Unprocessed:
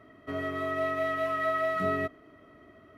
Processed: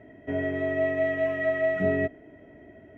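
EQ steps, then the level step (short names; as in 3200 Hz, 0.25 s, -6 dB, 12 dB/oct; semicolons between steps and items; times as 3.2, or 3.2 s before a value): running mean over 10 samples; Butterworth band-stop 1200 Hz, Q 2.1; +6.0 dB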